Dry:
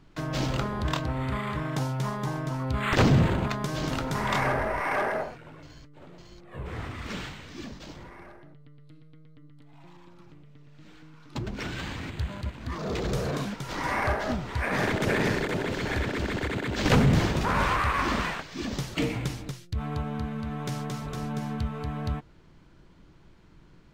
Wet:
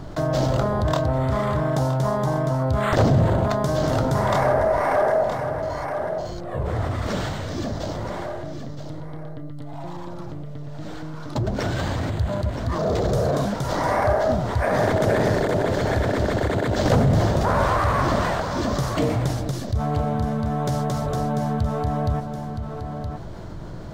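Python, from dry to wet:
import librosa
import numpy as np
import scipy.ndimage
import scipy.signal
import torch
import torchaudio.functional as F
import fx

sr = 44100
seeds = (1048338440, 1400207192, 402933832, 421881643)

y = fx.graphic_eq_15(x, sr, hz=(100, 630, 2500), db=(8, 11, -10))
y = y + 10.0 ** (-14.5 / 20.0) * np.pad(y, (int(969 * sr / 1000.0), 0))[:len(y)]
y = fx.env_flatten(y, sr, amount_pct=50)
y = F.gain(torch.from_numpy(y), -2.0).numpy()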